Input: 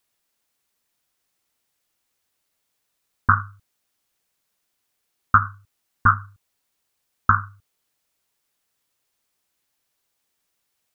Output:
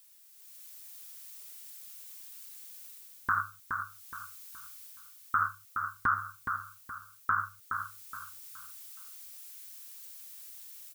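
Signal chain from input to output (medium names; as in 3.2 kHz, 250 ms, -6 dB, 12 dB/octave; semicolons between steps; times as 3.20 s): tilt EQ +4.5 dB/octave; level rider gain up to 10 dB; peak limiter -17.5 dBFS, peak gain reduction 16 dB; on a send: feedback delay 420 ms, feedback 34%, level -6 dB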